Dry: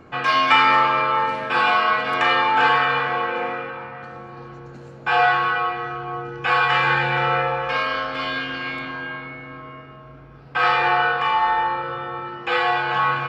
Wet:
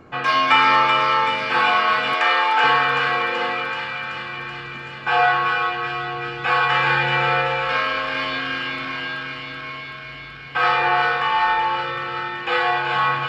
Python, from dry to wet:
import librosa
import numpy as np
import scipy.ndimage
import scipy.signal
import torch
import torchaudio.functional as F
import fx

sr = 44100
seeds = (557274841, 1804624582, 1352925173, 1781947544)

y = fx.highpass(x, sr, hz=430.0, slope=12, at=(2.14, 2.64))
y = fx.echo_wet_highpass(y, sr, ms=380, feedback_pct=75, hz=2000.0, wet_db=-3.5)